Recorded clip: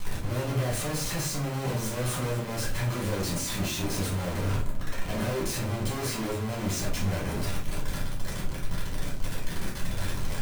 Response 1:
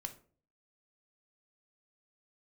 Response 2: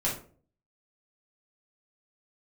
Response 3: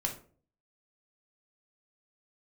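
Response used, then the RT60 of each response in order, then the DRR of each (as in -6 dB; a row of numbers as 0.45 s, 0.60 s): 2; 0.45 s, 0.45 s, 0.45 s; 6.0 dB, -6.5 dB, 1.0 dB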